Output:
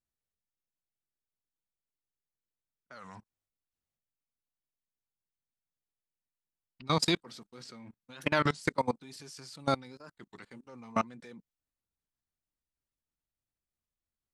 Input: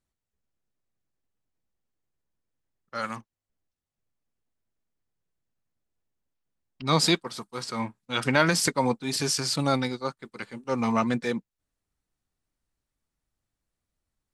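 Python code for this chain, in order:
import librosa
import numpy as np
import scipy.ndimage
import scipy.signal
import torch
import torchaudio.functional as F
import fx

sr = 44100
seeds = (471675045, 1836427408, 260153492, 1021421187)

y = fx.graphic_eq_15(x, sr, hz=(250, 1000, 10000), db=(4, -8, -7), at=(7.26, 8.01))
y = fx.level_steps(y, sr, step_db=23)
y = fx.record_warp(y, sr, rpm=33.33, depth_cents=250.0)
y = y * 10.0 ** (-2.5 / 20.0)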